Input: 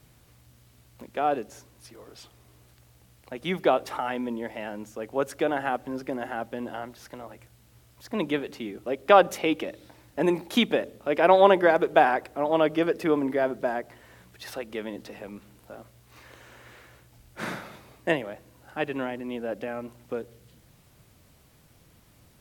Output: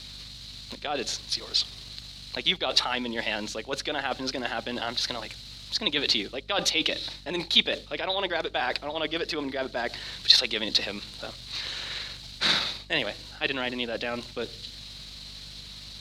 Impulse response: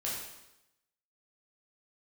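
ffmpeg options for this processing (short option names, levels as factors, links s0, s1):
-af "areverse,acompressor=threshold=0.0224:ratio=8,areverse,aeval=exprs='val(0)+0.00251*(sin(2*PI*50*n/s)+sin(2*PI*2*50*n/s)/2+sin(2*PI*3*50*n/s)/3+sin(2*PI*4*50*n/s)/4+sin(2*PI*5*50*n/s)/5)':c=same,lowpass=f=4100:t=q:w=6.1,atempo=1.4,crystalizer=i=8:c=0,volume=1.41"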